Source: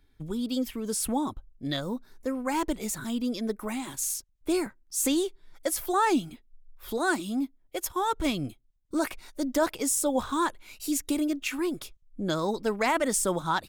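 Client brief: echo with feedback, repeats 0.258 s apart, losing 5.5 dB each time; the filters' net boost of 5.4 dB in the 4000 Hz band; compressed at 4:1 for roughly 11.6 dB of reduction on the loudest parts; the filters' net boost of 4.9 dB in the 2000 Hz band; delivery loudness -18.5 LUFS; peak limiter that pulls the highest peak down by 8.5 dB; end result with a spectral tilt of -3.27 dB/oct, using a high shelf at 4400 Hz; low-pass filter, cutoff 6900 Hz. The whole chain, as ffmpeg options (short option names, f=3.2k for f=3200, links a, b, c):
-af "lowpass=6.9k,equalizer=f=2k:t=o:g=5,equalizer=f=4k:t=o:g=3.5,highshelf=f=4.4k:g=4,acompressor=threshold=-33dB:ratio=4,alimiter=level_in=4.5dB:limit=-24dB:level=0:latency=1,volume=-4.5dB,aecho=1:1:258|516|774|1032|1290|1548|1806:0.531|0.281|0.149|0.079|0.0419|0.0222|0.0118,volume=18.5dB"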